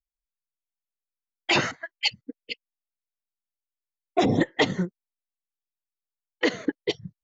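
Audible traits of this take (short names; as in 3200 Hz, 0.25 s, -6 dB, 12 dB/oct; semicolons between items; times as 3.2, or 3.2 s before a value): noise floor -91 dBFS; spectral tilt -4.5 dB/oct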